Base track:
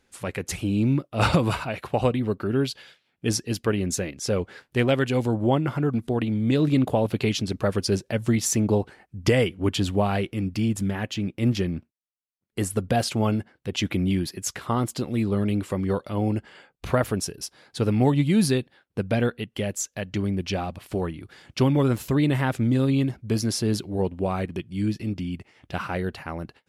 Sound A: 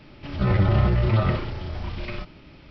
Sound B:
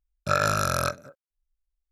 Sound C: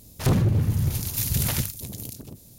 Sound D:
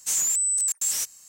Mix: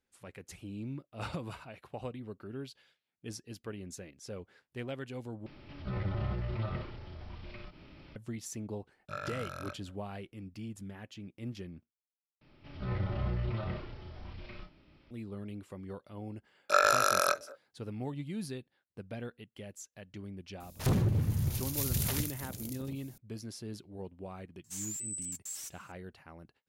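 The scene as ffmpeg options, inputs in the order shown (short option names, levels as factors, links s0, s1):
-filter_complex "[1:a]asplit=2[s0][s1];[2:a]asplit=2[s2][s3];[0:a]volume=0.119[s4];[s0]acompressor=mode=upward:threshold=0.0447:ratio=2.5:attack=3.2:release=140:knee=2.83:detection=peak[s5];[s2]highshelf=f=4300:t=q:w=1.5:g=-6[s6];[s1]asplit=2[s7][s8];[s8]adelay=33,volume=0.501[s9];[s7][s9]amix=inputs=2:normalize=0[s10];[s3]highpass=f=370:w=0.5412,highpass=f=370:w=1.3066[s11];[4:a]flanger=delay=2.6:depth=4.1:regen=31:speed=2:shape=sinusoidal[s12];[s4]asplit=3[s13][s14][s15];[s13]atrim=end=5.464[s16];[s5]atrim=end=2.7,asetpts=PTS-STARTPTS,volume=0.178[s17];[s14]atrim=start=8.156:end=12.414[s18];[s10]atrim=end=2.7,asetpts=PTS-STARTPTS,volume=0.168[s19];[s15]atrim=start=15.106[s20];[s6]atrim=end=1.91,asetpts=PTS-STARTPTS,volume=0.133,afade=t=in:d=0.004:c=hsin,afade=t=out:st=1.906:d=0.004:c=hsin,adelay=388962S[s21];[s11]atrim=end=1.91,asetpts=PTS-STARTPTS,volume=0.891,afade=t=in:d=0.004:c=hsin,afade=t=out:st=1.906:d=0.004:c=hsin,adelay=16430[s22];[3:a]atrim=end=2.58,asetpts=PTS-STARTPTS,volume=0.422,afade=t=in:d=0.004:c=hsin,afade=t=out:st=2.576:d=0.004:c=hsin,adelay=20600[s23];[s12]atrim=end=1.28,asetpts=PTS-STARTPTS,volume=0.237,afade=t=in:d=0.004:c=hsin,afade=t=out:st=1.276:d=0.004:c=hsin,adelay=24640[s24];[s16][s17]acrossfade=d=0.004:c1=hsin:c2=hsin[s25];[s25][s18]acrossfade=d=0.004:c1=hsin:c2=hsin[s26];[s26][s19]acrossfade=d=0.004:c1=hsin:c2=hsin[s27];[s27][s20]acrossfade=d=0.004:c1=hsin:c2=hsin[s28];[s28][s21][s22][s23][s24]amix=inputs=5:normalize=0"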